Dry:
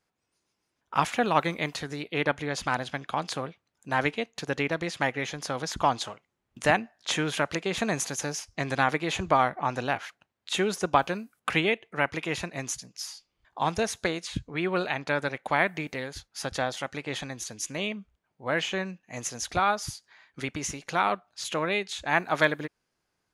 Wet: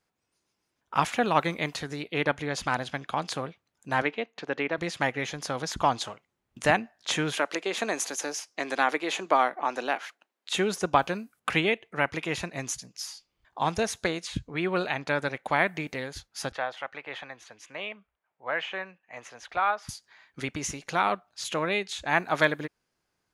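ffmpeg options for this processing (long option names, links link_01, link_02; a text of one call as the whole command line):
ffmpeg -i in.wav -filter_complex "[0:a]asettb=1/sr,asplit=3[link_01][link_02][link_03];[link_01]atrim=end=4.024[link_04];[link_02]atrim=start=4.02:end=4.78,asetpts=PTS-STARTPTS,afade=type=in:duration=0.004:curve=qsin,afade=type=out:start_time=0.756:duration=0.004:curve=qsin,highpass=250,lowpass=3100[link_05];[link_03]atrim=start=4.776[link_06];[link_04][link_05]acrossfade=duration=0.004:curve1=hsin:curve2=qsin[link_07];[link_07][link_06]acrossfade=duration=0.004:curve1=qsin:curve2=hsin,asettb=1/sr,asplit=3[link_08][link_09][link_10];[link_08]atrim=end=7.334[link_11];[link_09]atrim=start=7.33:end=10.55,asetpts=PTS-STARTPTS,afade=type=in:duration=0.004:curve=qsin,afade=type=out:start_time=3.216:duration=0.004:curve=qsin,highpass=frequency=270:width=0.5412,highpass=frequency=270:width=1.3066[link_12];[link_10]atrim=start=10.546[link_13];[link_11][link_12]acrossfade=duration=0.004:curve1=hsin:curve2=qsin[link_14];[link_14][link_13]acrossfade=duration=0.004:curve1=qsin:curve2=hsin,asettb=1/sr,asplit=3[link_15][link_16][link_17];[link_15]atrim=end=16.524[link_18];[link_16]atrim=start=16.52:end=19.89,asetpts=PTS-STARTPTS,afade=type=in:duration=0.004:curve=qsin,afade=type=out:start_time=3.366:duration=0.004:curve=qsin,acrossover=split=510 3100:gain=0.141 1 0.0891[link_19][link_20][link_21];[link_19][link_20][link_21]amix=inputs=3:normalize=0[link_22];[link_17]atrim=start=19.886[link_23];[link_18][link_22]acrossfade=duration=0.004:curve1=hsin:curve2=qsin[link_24];[link_24][link_23]acrossfade=duration=0.004:curve1=qsin:curve2=hsin" out.wav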